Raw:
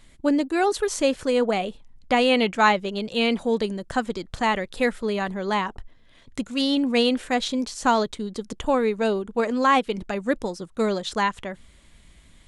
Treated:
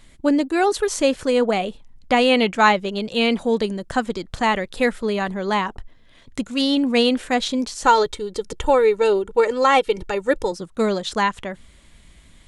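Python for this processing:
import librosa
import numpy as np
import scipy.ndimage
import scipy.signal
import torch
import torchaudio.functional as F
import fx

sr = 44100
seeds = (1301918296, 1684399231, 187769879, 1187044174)

y = fx.comb(x, sr, ms=2.2, depth=0.76, at=(7.84, 10.52))
y = F.gain(torch.from_numpy(y), 3.0).numpy()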